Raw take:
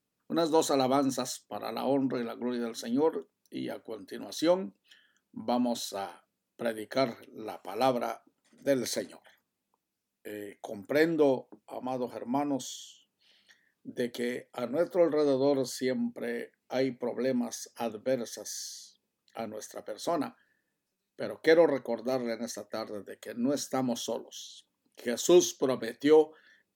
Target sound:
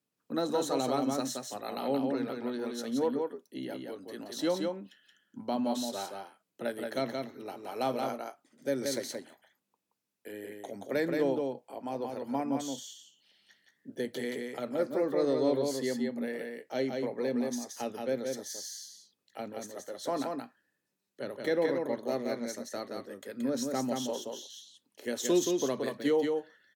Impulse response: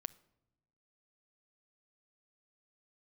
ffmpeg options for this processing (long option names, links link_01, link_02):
-filter_complex "[0:a]highpass=92,acrossover=split=270[link_01][link_02];[link_02]alimiter=limit=-19dB:level=0:latency=1:release=214[link_03];[link_01][link_03]amix=inputs=2:normalize=0,aecho=1:1:175:0.631,volume=-2.5dB"